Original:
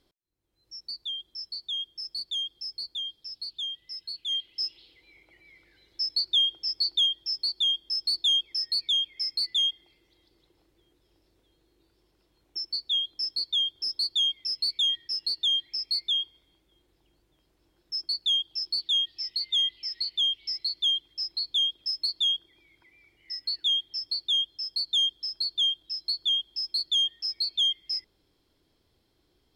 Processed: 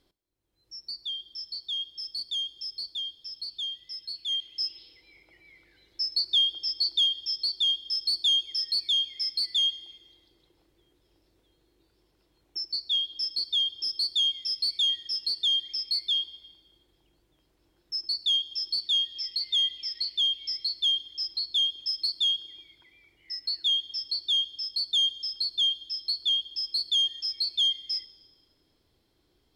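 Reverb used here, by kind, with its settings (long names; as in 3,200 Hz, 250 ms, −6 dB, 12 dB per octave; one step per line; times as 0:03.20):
dense smooth reverb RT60 1.7 s, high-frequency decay 0.75×, DRR 16 dB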